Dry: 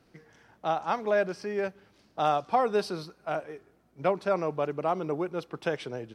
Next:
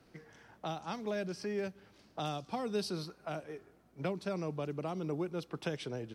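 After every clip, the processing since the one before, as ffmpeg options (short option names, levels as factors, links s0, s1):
-filter_complex "[0:a]acrossover=split=300|3000[s0][s1][s2];[s1]acompressor=threshold=0.01:ratio=6[s3];[s0][s3][s2]amix=inputs=3:normalize=0"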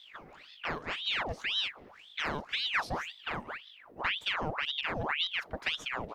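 -af "equalizer=f=6600:w=0.46:g=-10.5,aeval=exprs='val(0)+0.00126*(sin(2*PI*50*n/s)+sin(2*PI*2*50*n/s)/2+sin(2*PI*3*50*n/s)/3+sin(2*PI*4*50*n/s)/4+sin(2*PI*5*50*n/s)/5)':c=same,aeval=exprs='val(0)*sin(2*PI*1900*n/s+1900*0.85/1.9*sin(2*PI*1.9*n/s))':c=same,volume=2.11"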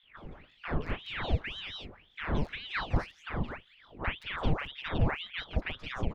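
-filter_complex "[0:a]aemphasis=mode=reproduction:type=riaa,volume=8.91,asoftclip=hard,volume=0.112,acrossover=split=950|3400[s0][s1][s2];[s0]adelay=30[s3];[s2]adelay=170[s4];[s3][s1][s4]amix=inputs=3:normalize=0"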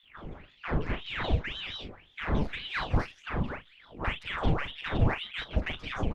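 -filter_complex "[0:a]asplit=2[s0][s1];[s1]asoftclip=type=tanh:threshold=0.0211,volume=0.355[s2];[s0][s2]amix=inputs=2:normalize=0,asplit=2[s3][s4];[s4]adelay=38,volume=0.282[s5];[s3][s5]amix=inputs=2:normalize=0,volume=1.19" -ar 48000 -c:a libopus -b:a 16k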